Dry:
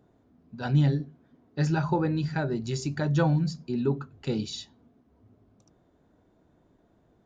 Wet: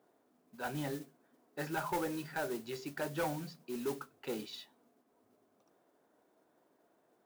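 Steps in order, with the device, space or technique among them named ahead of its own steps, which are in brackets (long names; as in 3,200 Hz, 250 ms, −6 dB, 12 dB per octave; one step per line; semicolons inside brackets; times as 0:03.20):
carbon microphone (band-pass filter 430–2,800 Hz; soft clipping −27 dBFS, distortion −12 dB; noise that follows the level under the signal 14 dB)
level −2 dB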